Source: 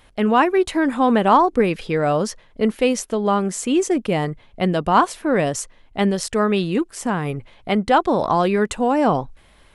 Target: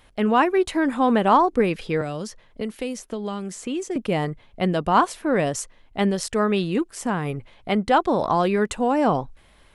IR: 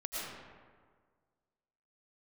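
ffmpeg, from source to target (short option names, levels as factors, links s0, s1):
-filter_complex "[0:a]asettb=1/sr,asplit=3[s0][s1][s2];[s0]atrim=end=2.014[s3];[s1]atrim=start=2.01:end=3.96,asetpts=PTS-STARTPTS,afade=t=in:d=0.004:c=qsin,afade=t=out:st=1.946:d=0.004:c=qsin,acrossover=split=350|2400|6800[s4][s5][s6][s7];[s4]acompressor=threshold=0.0398:ratio=4[s8];[s5]acompressor=threshold=0.0282:ratio=4[s9];[s6]acompressor=threshold=0.0112:ratio=4[s10];[s7]acompressor=threshold=0.00794:ratio=4[s11];[s8][s9][s10][s11]amix=inputs=4:normalize=0[s12];[s2]atrim=start=3.956[s13];[s3][s12]acrossfade=d=0.004:c1=hsin:c2=qsin[s14];[s14][s13]acrossfade=d=0.004:c1=qsin:c2=hsin,volume=0.75"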